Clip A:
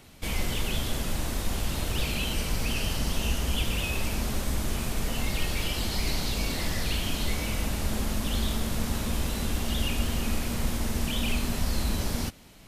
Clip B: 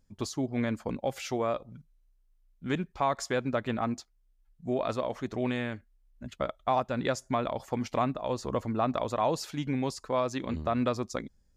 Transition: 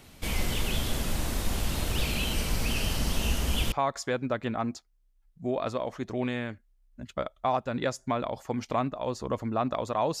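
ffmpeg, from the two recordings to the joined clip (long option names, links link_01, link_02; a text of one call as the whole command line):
ffmpeg -i cue0.wav -i cue1.wav -filter_complex "[0:a]apad=whole_dur=10.2,atrim=end=10.2,atrim=end=3.722[link_01];[1:a]atrim=start=2.948:end=9.43[link_02];[link_01][link_02]acrossfade=duration=0.004:curve1=hsin:curve2=hsin" out.wav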